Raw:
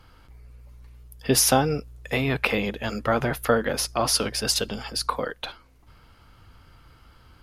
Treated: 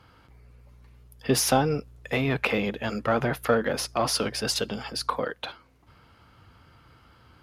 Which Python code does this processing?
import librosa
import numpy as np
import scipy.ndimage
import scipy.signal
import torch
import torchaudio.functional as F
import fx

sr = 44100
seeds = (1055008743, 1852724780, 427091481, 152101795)

p1 = scipy.signal.sosfilt(scipy.signal.butter(2, 83.0, 'highpass', fs=sr, output='sos'), x)
p2 = fx.high_shelf(p1, sr, hz=5200.0, db=-7.5)
p3 = 10.0 ** (-20.5 / 20.0) * np.tanh(p2 / 10.0 ** (-20.5 / 20.0))
p4 = p2 + (p3 * librosa.db_to_amplitude(-5.0))
y = p4 * librosa.db_to_amplitude(-3.5)